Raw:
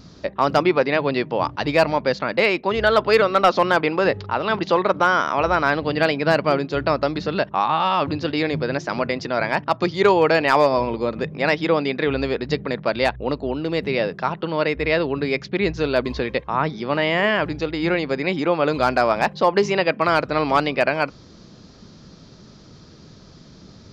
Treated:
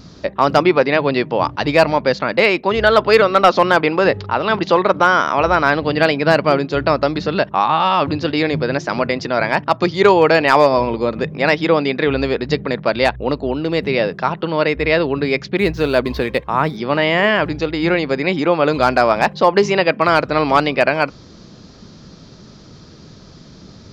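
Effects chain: 15.57–16.77 s: median filter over 5 samples; trim +4.5 dB

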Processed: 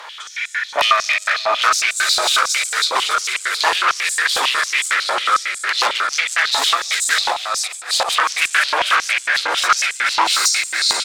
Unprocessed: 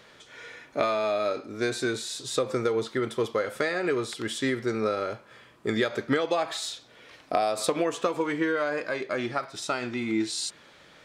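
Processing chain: backward echo that repeats 243 ms, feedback 80%, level -4.5 dB; 6.74–8.10 s: compressor with a negative ratio -31 dBFS, ratio -0.5; sine folder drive 14 dB, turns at -9.5 dBFS; frequency-shifting echo 151 ms, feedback 61%, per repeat +43 Hz, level -13.5 dB; loudness maximiser +8 dB; step-sequenced high-pass 11 Hz 910–7700 Hz; trim -10.5 dB

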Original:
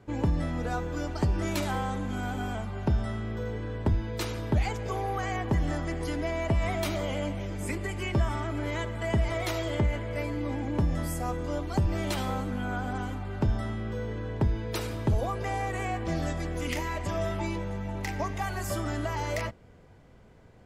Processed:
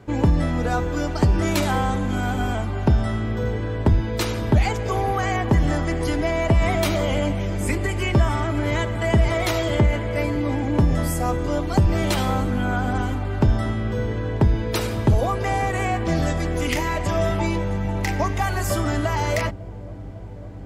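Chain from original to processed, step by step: feedback echo behind a low-pass 552 ms, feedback 84%, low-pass 470 Hz, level -17 dB; trim +8.5 dB

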